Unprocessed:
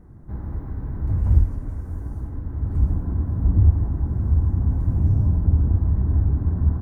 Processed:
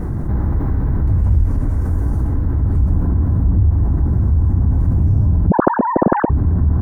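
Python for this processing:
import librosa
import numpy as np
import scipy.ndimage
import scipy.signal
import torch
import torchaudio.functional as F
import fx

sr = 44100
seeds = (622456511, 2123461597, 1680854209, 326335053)

y = fx.sine_speech(x, sr, at=(5.5, 6.3))
y = fx.env_flatten(y, sr, amount_pct=70)
y = F.gain(torch.from_numpy(y), -1.0).numpy()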